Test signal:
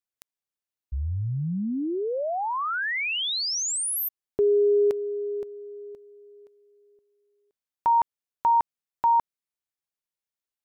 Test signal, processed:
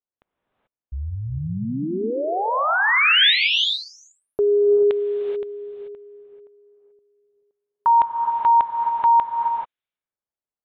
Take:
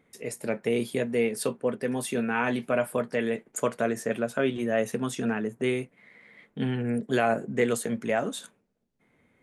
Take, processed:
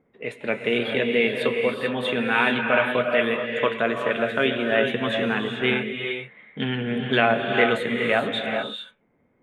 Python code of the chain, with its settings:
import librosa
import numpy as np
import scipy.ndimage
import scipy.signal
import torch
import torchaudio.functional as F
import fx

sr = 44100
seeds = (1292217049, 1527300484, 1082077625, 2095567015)

y = fx.curve_eq(x, sr, hz=(180.0, 820.0, 3600.0, 5200.0), db=(0, 4, 13, -16))
y = fx.env_lowpass(y, sr, base_hz=710.0, full_db=-27.0)
y = fx.rev_gated(y, sr, seeds[0], gate_ms=460, shape='rising', drr_db=3.0)